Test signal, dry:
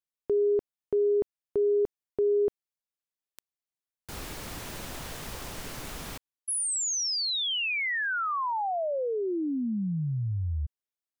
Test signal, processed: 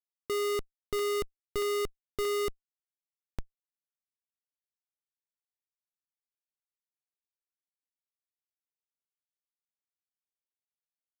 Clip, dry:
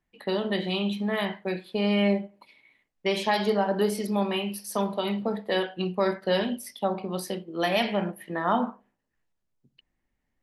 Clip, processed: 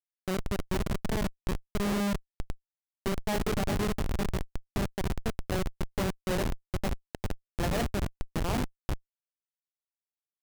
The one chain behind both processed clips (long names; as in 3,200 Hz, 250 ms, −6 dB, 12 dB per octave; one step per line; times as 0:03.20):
one scale factor per block 7 bits
single-tap delay 401 ms −6.5 dB
comparator with hysteresis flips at −21 dBFS